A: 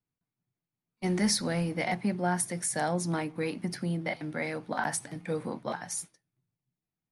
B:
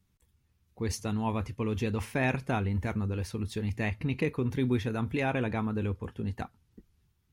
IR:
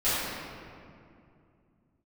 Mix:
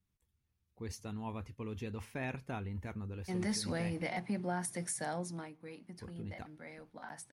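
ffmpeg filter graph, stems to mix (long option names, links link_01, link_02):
-filter_complex "[0:a]agate=range=-33dB:threshold=-41dB:ratio=3:detection=peak,adelay=2250,volume=-4.5dB,afade=type=in:start_time=3.2:duration=0.31:silence=0.316228,afade=type=out:start_time=4.82:duration=0.69:silence=0.237137[link_01];[1:a]volume=-11dB,asplit=3[link_02][link_03][link_04];[link_02]atrim=end=4.03,asetpts=PTS-STARTPTS,afade=type=out:start_time=4.026:duration=0.004:curve=hsin[link_05];[link_03]atrim=start=4.03:end=5.99,asetpts=PTS-STARTPTS,volume=0[link_06];[link_04]atrim=start=5.99,asetpts=PTS-STARTPTS,afade=type=in:duration=0.004:curve=hsin[link_07];[link_05][link_06][link_07]concat=n=3:v=0:a=1[link_08];[link_01][link_08]amix=inputs=2:normalize=0,alimiter=level_in=3dB:limit=-24dB:level=0:latency=1:release=113,volume=-3dB"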